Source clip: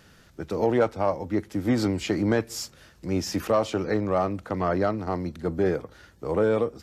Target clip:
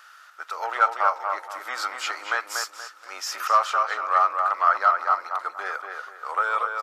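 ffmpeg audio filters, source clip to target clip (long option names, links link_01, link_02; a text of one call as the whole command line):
ffmpeg -i in.wav -filter_complex "[0:a]highpass=frequency=820:width=0.5412,highpass=frequency=820:width=1.3066,equalizer=frequency=1300:width_type=o:width=0.43:gain=14.5,asplit=2[link_01][link_02];[link_02]adelay=237,lowpass=frequency=2500:poles=1,volume=-4dB,asplit=2[link_03][link_04];[link_04]adelay=237,lowpass=frequency=2500:poles=1,volume=0.35,asplit=2[link_05][link_06];[link_06]adelay=237,lowpass=frequency=2500:poles=1,volume=0.35,asplit=2[link_07][link_08];[link_08]adelay=237,lowpass=frequency=2500:poles=1,volume=0.35[link_09];[link_01][link_03][link_05][link_07][link_09]amix=inputs=5:normalize=0,volume=2.5dB" out.wav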